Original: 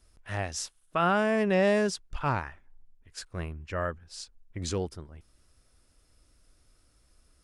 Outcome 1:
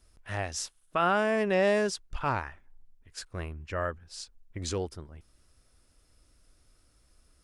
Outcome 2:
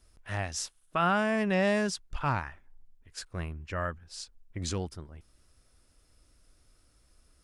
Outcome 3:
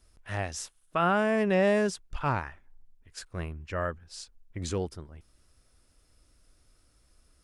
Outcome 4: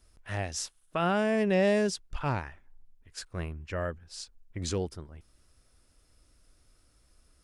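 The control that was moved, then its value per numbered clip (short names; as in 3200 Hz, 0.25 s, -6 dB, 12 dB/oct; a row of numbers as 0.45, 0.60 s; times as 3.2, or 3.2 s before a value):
dynamic EQ, frequency: 160, 440, 4800, 1200 Hz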